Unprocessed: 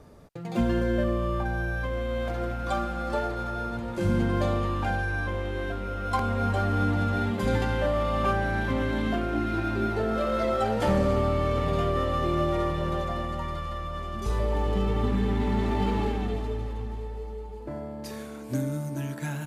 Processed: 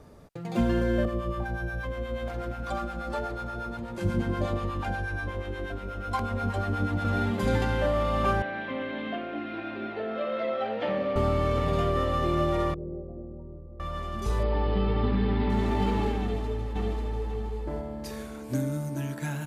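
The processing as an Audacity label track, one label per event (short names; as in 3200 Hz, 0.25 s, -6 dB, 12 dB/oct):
1.050000	7.050000	harmonic tremolo 8.3 Hz, crossover 660 Hz
8.420000	11.160000	speaker cabinet 320–3400 Hz, peaks and dips at 380 Hz -8 dB, 900 Hz -8 dB, 1400 Hz -7 dB
12.740000	13.800000	ladder low-pass 480 Hz, resonance 50%
14.430000	15.500000	brick-wall FIR low-pass 5200 Hz
16.210000	17.270000	echo throw 0.54 s, feedback 25%, level -1.5 dB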